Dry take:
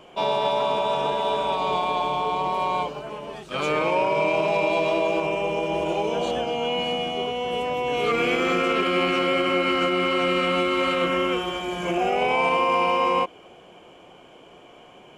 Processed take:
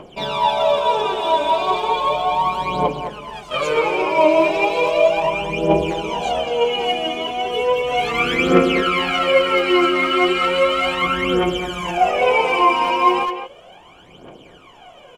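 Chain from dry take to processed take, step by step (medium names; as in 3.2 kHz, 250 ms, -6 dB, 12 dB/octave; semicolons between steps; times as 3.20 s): phaser 0.35 Hz, delay 3.3 ms, feedback 77%; speakerphone echo 210 ms, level -8 dB; trim +1 dB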